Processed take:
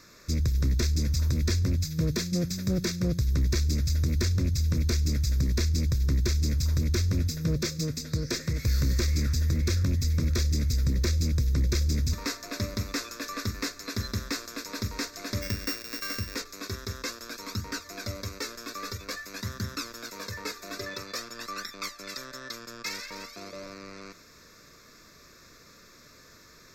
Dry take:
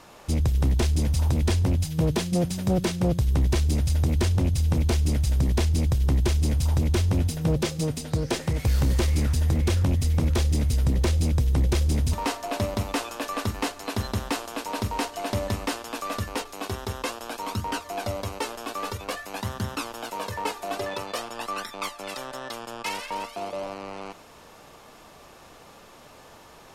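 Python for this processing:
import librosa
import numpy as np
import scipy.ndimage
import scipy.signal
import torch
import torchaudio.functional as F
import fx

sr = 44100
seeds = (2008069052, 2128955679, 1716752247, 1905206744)

y = fx.sample_sort(x, sr, block=16, at=(15.41, 16.34), fade=0.02)
y = fx.high_shelf(y, sr, hz=2900.0, db=8.5)
y = fx.fixed_phaser(y, sr, hz=3000.0, stages=6)
y = F.gain(torch.from_numpy(y), -3.0).numpy()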